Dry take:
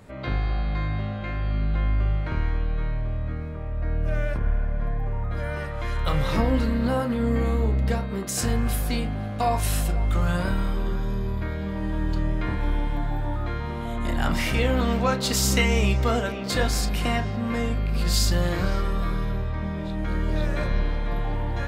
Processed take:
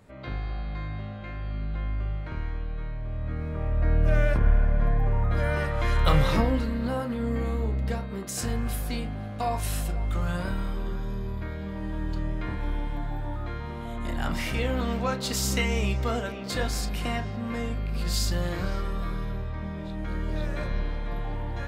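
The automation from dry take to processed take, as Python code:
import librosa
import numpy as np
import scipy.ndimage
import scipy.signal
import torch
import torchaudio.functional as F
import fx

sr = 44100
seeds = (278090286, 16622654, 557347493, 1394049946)

y = fx.gain(x, sr, db=fx.line((2.98, -7.0), (3.63, 3.5), (6.15, 3.5), (6.65, -5.0)))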